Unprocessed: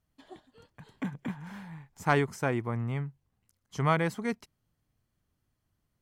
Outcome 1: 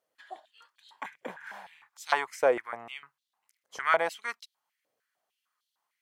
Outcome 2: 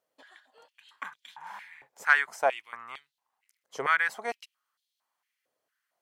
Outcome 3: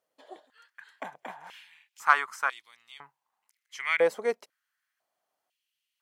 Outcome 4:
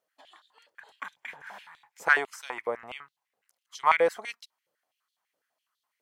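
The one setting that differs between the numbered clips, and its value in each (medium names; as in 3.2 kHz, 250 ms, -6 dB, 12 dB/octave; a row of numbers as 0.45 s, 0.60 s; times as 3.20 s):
step-sequenced high-pass, rate: 6.6 Hz, 4.4 Hz, 2 Hz, 12 Hz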